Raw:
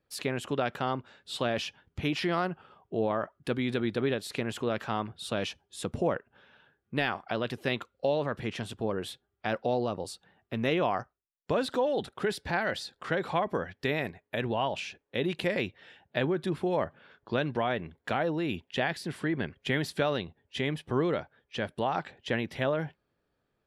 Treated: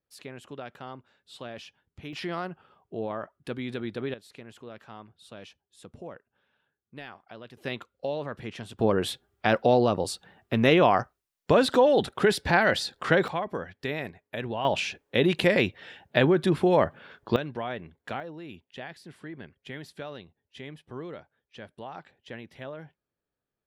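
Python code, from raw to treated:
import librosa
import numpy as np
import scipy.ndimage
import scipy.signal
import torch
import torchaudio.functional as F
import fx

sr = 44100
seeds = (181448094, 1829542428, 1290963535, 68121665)

y = fx.gain(x, sr, db=fx.steps((0.0, -10.5), (2.13, -4.0), (4.14, -13.5), (7.57, -3.5), (8.79, 8.0), (13.28, -2.0), (14.65, 7.5), (17.36, -4.0), (18.2, -11.0)))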